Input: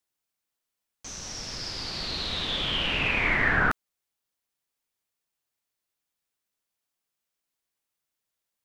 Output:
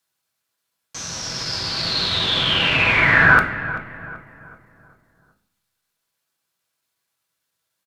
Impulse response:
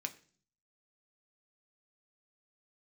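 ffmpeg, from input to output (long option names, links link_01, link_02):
-filter_complex "[0:a]asplit=2[link_01][link_02];[link_02]adelay=423,lowpass=frequency=1800:poles=1,volume=-12.5dB,asplit=2[link_03][link_04];[link_04]adelay=423,lowpass=frequency=1800:poles=1,volume=0.46,asplit=2[link_05][link_06];[link_06]adelay=423,lowpass=frequency=1800:poles=1,volume=0.46,asplit=2[link_07][link_08];[link_08]adelay=423,lowpass=frequency=1800:poles=1,volume=0.46,asplit=2[link_09][link_10];[link_10]adelay=423,lowpass=frequency=1800:poles=1,volume=0.46[link_11];[link_01][link_03][link_05][link_07][link_09][link_11]amix=inputs=6:normalize=0,atempo=1.1[link_12];[1:a]atrim=start_sample=2205,asetrate=28224,aresample=44100[link_13];[link_12][link_13]afir=irnorm=-1:irlink=0,volume=8dB"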